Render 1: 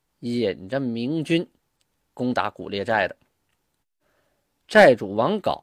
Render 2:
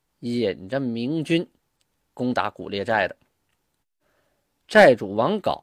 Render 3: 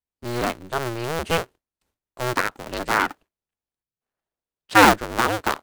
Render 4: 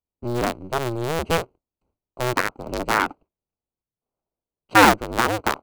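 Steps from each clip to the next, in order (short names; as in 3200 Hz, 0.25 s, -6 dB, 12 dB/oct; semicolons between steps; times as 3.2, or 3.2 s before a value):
nothing audible
cycle switcher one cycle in 2, inverted; gate with hold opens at -45 dBFS; dynamic EQ 1400 Hz, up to +6 dB, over -34 dBFS, Q 1.9; gain -2 dB
Wiener smoothing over 25 samples; in parallel at -1 dB: compressor, threshold -28 dBFS, peak gain reduction 18.5 dB; on the sum: gain -1 dB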